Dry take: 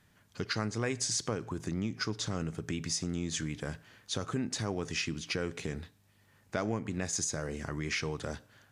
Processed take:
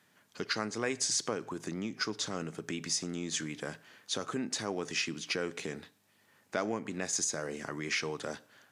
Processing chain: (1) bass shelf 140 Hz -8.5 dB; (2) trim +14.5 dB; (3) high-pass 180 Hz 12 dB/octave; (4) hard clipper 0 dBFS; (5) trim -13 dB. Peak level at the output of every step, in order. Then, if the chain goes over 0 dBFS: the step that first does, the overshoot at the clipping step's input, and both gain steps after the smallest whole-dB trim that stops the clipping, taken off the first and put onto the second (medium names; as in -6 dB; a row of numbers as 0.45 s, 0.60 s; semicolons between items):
-16.0 dBFS, -1.5 dBFS, -3.0 dBFS, -3.0 dBFS, -16.0 dBFS; nothing clips